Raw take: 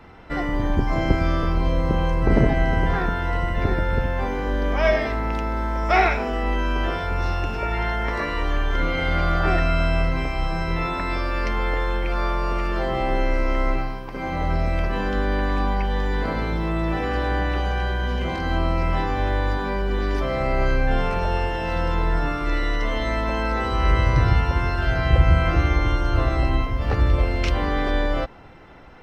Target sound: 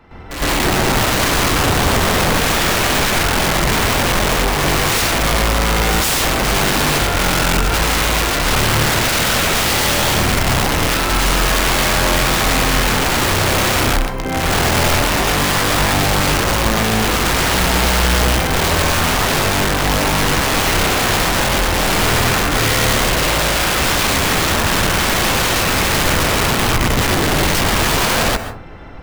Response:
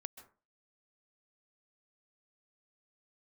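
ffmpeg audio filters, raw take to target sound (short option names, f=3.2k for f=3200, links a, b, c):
-filter_complex "[0:a]aeval=exprs='(mod(10*val(0)+1,2)-1)/10':c=same,asplit=2[a][b];[b]lowshelf=f=150:g=7[c];[1:a]atrim=start_sample=2205,adelay=111[d];[c][d]afir=irnorm=-1:irlink=0,volume=13.5dB[e];[a][e]amix=inputs=2:normalize=0,volume=-1.5dB"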